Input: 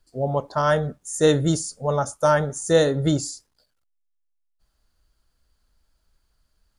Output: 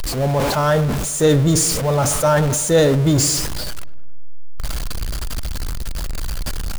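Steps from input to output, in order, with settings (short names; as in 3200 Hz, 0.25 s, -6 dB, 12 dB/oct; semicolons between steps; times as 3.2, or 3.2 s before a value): zero-crossing step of -23 dBFS; low shelf 140 Hz +8 dB; darkening echo 0.103 s, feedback 67%, low-pass 2500 Hz, level -19.5 dB; sustainer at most 27 dB/s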